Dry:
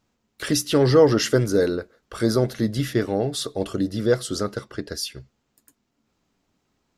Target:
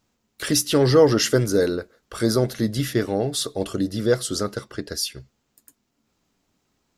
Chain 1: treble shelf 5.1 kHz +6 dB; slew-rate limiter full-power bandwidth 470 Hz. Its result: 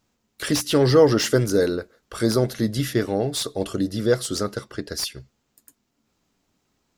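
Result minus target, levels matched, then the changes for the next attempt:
slew-rate limiter: distortion +20 dB
change: slew-rate limiter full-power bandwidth 1.6905 kHz

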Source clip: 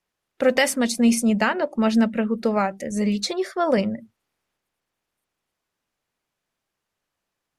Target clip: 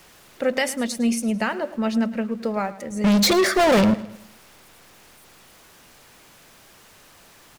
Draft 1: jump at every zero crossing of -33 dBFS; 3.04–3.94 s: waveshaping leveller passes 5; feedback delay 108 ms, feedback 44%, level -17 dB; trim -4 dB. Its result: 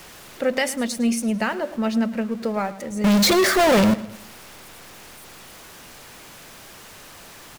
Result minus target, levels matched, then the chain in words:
jump at every zero crossing: distortion +7 dB
jump at every zero crossing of -40.5 dBFS; 3.04–3.94 s: waveshaping leveller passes 5; feedback delay 108 ms, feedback 44%, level -17 dB; trim -4 dB

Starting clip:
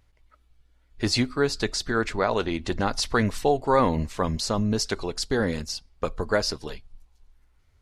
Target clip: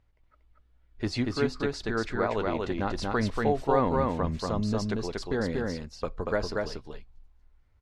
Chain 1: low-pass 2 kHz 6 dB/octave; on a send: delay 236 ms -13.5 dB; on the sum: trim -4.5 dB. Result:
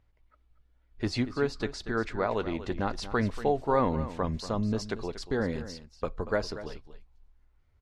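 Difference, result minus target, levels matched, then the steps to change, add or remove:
echo-to-direct -11 dB
change: delay 236 ms -2.5 dB

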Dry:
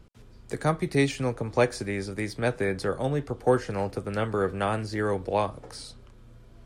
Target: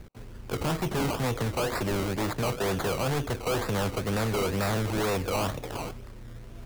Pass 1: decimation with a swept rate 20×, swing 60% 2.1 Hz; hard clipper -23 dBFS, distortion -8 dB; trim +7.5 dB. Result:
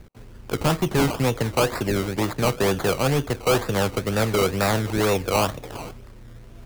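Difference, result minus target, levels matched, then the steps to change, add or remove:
hard clipper: distortion -6 dB
change: hard clipper -33 dBFS, distortion -2 dB

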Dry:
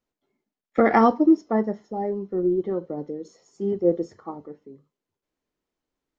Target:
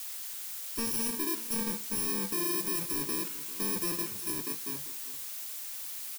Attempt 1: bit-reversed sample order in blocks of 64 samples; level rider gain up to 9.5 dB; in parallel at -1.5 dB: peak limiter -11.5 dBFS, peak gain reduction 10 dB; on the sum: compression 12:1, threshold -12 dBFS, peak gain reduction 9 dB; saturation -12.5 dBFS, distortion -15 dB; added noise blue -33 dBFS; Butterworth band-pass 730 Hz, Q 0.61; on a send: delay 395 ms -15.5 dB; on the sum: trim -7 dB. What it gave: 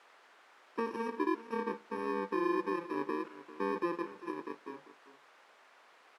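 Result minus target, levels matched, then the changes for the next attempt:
1 kHz band +11.5 dB; saturation: distortion -9 dB
change: saturation -23 dBFS, distortion -6 dB; remove: Butterworth band-pass 730 Hz, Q 0.61

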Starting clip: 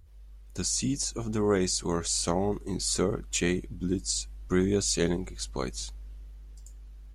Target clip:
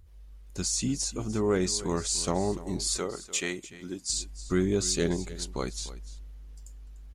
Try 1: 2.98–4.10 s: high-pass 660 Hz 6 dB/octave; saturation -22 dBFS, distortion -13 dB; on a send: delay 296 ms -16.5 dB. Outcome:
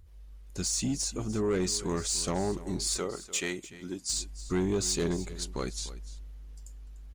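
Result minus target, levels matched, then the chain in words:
saturation: distortion +13 dB
2.98–4.10 s: high-pass 660 Hz 6 dB/octave; saturation -12.5 dBFS, distortion -26 dB; on a send: delay 296 ms -16.5 dB

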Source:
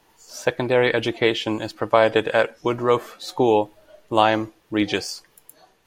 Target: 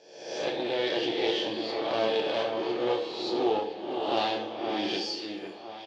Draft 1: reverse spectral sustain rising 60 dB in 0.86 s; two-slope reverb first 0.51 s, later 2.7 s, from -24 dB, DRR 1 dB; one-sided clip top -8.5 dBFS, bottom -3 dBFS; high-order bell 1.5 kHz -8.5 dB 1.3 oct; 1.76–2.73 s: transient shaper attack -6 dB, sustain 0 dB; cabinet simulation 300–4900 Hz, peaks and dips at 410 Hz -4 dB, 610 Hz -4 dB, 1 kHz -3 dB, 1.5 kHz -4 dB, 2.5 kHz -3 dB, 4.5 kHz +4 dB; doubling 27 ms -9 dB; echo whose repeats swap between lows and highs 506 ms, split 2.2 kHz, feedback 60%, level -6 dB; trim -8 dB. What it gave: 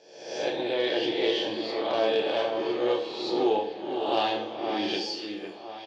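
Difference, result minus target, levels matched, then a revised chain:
one-sided clip: distortion -10 dB
reverse spectral sustain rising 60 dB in 0.86 s; two-slope reverb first 0.51 s, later 2.7 s, from -24 dB, DRR 1 dB; one-sided clip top -18.5 dBFS, bottom -3 dBFS; high-order bell 1.5 kHz -8.5 dB 1.3 oct; 1.76–2.73 s: transient shaper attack -6 dB, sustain 0 dB; cabinet simulation 300–4900 Hz, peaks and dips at 410 Hz -4 dB, 610 Hz -4 dB, 1 kHz -3 dB, 1.5 kHz -4 dB, 2.5 kHz -3 dB, 4.5 kHz +4 dB; doubling 27 ms -9 dB; echo whose repeats swap between lows and highs 506 ms, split 2.2 kHz, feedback 60%, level -6 dB; trim -8 dB

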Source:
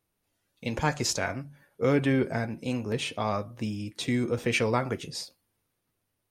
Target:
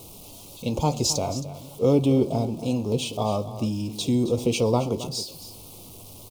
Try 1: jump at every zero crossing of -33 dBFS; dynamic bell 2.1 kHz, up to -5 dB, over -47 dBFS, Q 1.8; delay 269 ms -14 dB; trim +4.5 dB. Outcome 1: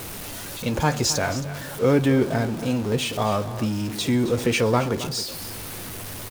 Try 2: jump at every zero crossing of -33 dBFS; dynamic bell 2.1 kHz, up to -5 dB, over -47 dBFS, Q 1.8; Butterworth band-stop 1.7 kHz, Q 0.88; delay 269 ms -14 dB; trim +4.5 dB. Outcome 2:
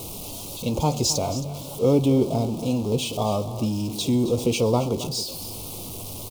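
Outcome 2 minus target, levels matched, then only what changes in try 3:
jump at every zero crossing: distortion +8 dB
change: jump at every zero crossing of -42 dBFS

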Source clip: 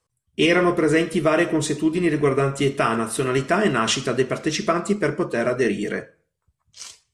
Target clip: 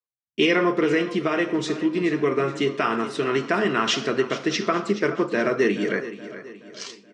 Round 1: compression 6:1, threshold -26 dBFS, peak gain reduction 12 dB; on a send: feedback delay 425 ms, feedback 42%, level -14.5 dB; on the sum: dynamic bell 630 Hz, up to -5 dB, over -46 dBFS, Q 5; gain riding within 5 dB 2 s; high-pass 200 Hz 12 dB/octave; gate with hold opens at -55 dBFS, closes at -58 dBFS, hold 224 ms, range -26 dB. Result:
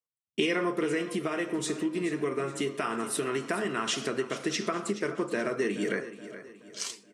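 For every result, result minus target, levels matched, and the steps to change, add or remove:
8 kHz band +9.0 dB; compression: peak gain reduction +8.5 dB
add after dynamic bell: low-pass 5.7 kHz 24 dB/octave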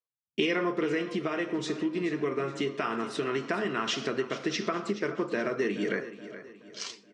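compression: peak gain reduction +8.5 dB
change: compression 6:1, threshold -15.5 dBFS, peak gain reduction 3.5 dB

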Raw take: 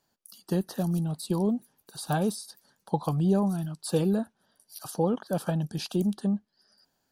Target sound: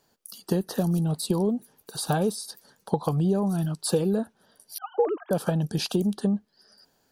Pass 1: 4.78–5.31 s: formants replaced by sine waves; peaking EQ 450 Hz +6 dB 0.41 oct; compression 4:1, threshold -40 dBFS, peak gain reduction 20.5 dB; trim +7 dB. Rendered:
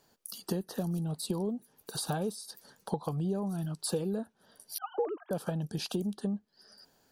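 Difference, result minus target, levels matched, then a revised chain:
compression: peak gain reduction +8.5 dB
4.78–5.31 s: formants replaced by sine waves; peaking EQ 450 Hz +6 dB 0.41 oct; compression 4:1, threshold -28.5 dBFS, peak gain reduction 12 dB; trim +7 dB

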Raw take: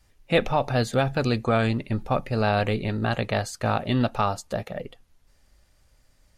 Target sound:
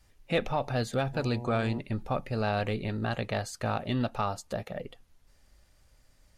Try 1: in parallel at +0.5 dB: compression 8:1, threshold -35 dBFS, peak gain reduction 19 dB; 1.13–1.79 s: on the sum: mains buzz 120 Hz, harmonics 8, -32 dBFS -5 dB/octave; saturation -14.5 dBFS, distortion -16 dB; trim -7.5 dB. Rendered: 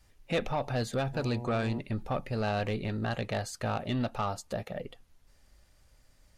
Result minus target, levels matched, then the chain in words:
saturation: distortion +13 dB
in parallel at +0.5 dB: compression 8:1, threshold -35 dBFS, peak gain reduction 19 dB; 1.13–1.79 s: on the sum: mains buzz 120 Hz, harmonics 8, -32 dBFS -5 dB/octave; saturation -6 dBFS, distortion -29 dB; trim -7.5 dB

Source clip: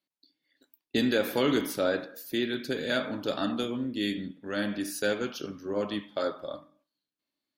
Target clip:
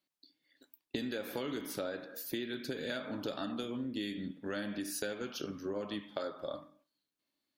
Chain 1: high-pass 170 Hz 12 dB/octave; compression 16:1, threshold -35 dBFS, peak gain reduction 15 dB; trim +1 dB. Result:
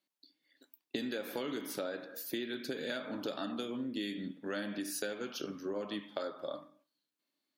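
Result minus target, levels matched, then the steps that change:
125 Hz band -3.5 dB
remove: high-pass 170 Hz 12 dB/octave

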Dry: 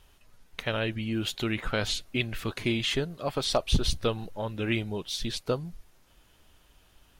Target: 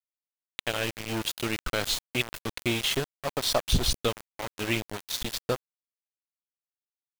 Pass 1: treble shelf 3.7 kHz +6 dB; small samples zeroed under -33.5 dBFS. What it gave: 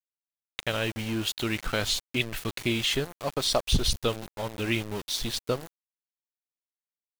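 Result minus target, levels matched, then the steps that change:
small samples zeroed: distortion -7 dB
change: small samples zeroed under -27 dBFS

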